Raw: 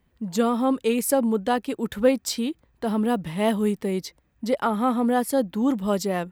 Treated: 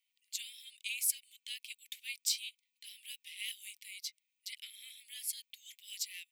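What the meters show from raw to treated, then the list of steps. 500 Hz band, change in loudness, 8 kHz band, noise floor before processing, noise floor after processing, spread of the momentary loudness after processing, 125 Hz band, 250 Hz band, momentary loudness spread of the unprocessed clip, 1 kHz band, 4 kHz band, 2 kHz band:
under -40 dB, -15.5 dB, -3.5 dB, -66 dBFS, -85 dBFS, 16 LU, under -40 dB, under -40 dB, 8 LU, under -40 dB, -3.5 dB, -11.0 dB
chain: steep high-pass 2200 Hz 72 dB/oct; gain -3.5 dB

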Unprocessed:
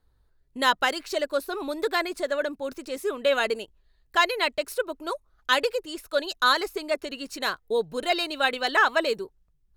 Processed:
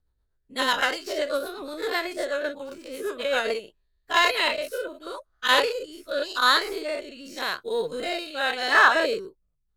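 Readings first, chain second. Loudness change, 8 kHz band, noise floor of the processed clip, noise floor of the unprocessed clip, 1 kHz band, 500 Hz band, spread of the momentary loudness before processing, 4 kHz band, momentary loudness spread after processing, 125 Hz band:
+1.5 dB, +1.5 dB, -73 dBFS, -66 dBFS, +1.0 dB, -0.5 dB, 11 LU, +2.0 dB, 15 LU, n/a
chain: spectral dilation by 0.12 s; rotary speaker horn 8 Hz, later 0.9 Hz, at 3.14; in parallel at -9.5 dB: soft clip -19.5 dBFS, distortion -8 dB; on the sum: upward expander 1.5:1, over -37 dBFS; gain -1.5 dB

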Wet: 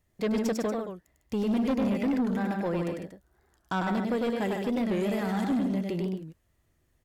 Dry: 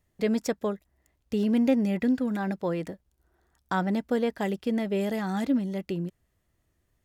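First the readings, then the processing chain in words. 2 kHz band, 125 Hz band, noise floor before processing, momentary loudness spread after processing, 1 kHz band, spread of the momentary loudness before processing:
0.0 dB, 0.0 dB, -74 dBFS, 9 LU, +0.5 dB, 10 LU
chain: loudspeakers at several distances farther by 34 m -4 dB, 52 m -8 dB, 81 m -11 dB; soft clip -22 dBFS, distortion -13 dB; record warp 45 rpm, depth 160 cents

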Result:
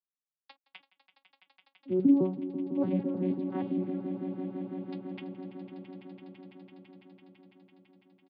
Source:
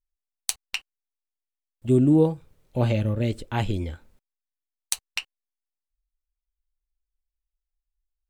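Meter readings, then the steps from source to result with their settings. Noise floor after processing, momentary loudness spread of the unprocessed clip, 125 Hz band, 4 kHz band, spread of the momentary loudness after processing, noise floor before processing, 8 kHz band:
under -85 dBFS, 15 LU, -14.0 dB, under -20 dB, 22 LU, under -85 dBFS, under -40 dB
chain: arpeggiated vocoder bare fifth, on F#3, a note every 0.157 s; vibrato 1.5 Hz 21 cents; air absorption 260 m; swelling echo 0.167 s, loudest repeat 5, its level -13 dB; downsampling 11025 Hz; gain -6 dB

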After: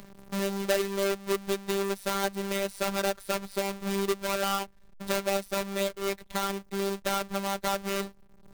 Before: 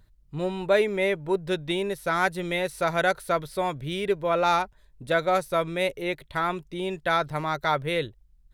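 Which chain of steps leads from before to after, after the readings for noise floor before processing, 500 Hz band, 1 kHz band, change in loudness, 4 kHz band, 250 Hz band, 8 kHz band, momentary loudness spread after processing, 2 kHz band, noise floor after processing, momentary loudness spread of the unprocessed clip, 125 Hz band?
-59 dBFS, -4.0 dB, -6.5 dB, -4.0 dB, -0.5 dB, -1.5 dB, +8.0 dB, 5 LU, -6.5 dB, -55 dBFS, 7 LU, -5.5 dB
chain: half-waves squared off; robotiser 197 Hz; three-band squash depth 70%; gain -6.5 dB

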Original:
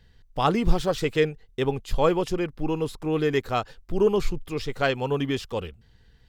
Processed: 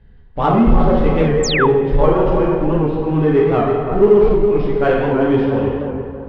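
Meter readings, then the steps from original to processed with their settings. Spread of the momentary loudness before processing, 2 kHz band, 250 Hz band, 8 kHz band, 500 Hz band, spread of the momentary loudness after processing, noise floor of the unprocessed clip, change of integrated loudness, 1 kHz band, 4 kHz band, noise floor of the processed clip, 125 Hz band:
9 LU, +7.5 dB, +11.5 dB, n/a, +11.5 dB, 6 LU, -58 dBFS, +10.5 dB, +9.5 dB, +5.0 dB, -42 dBFS, +11.5 dB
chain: block floating point 5-bit; air absorption 340 m; on a send: analogue delay 0.328 s, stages 4096, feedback 40%, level -7 dB; on the sum: plate-style reverb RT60 1.4 s, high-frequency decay 0.9×, DRR -4 dB; in parallel at -5 dB: hard clip -18 dBFS, distortion -9 dB; on the sum: painted sound fall, 1.43–1.67, 820–7900 Hz -15 dBFS; high shelf 2200 Hz -11 dB; record warp 78 rpm, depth 100 cents; gain +2.5 dB

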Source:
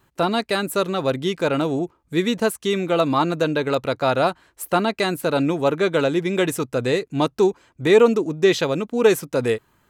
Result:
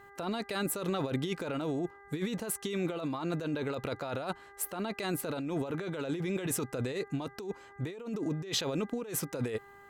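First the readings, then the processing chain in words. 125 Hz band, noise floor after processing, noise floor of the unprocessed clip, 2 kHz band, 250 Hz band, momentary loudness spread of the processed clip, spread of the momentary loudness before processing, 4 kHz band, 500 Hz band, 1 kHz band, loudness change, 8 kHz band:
-9.0 dB, -54 dBFS, -64 dBFS, -15.0 dB, -12.0 dB, 5 LU, 6 LU, -12.0 dB, -17.0 dB, -16.5 dB, -14.0 dB, -4.0 dB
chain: buzz 400 Hz, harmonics 5, -52 dBFS -1 dB/oct; negative-ratio compressor -26 dBFS, ratio -1; gain -8.5 dB

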